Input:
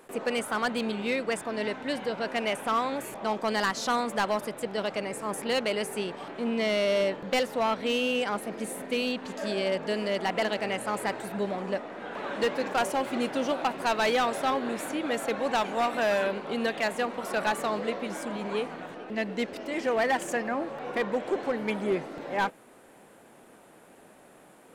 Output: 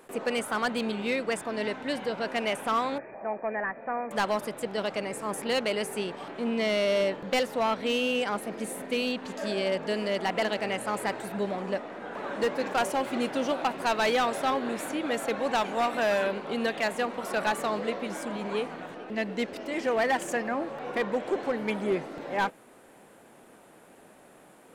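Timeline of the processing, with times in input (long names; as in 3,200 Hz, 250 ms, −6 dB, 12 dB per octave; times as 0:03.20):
0:02.98–0:04.11: Chebyshev low-pass with heavy ripple 2,500 Hz, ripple 9 dB
0:11.98–0:12.59: parametric band 3,200 Hz −4.5 dB 1.3 octaves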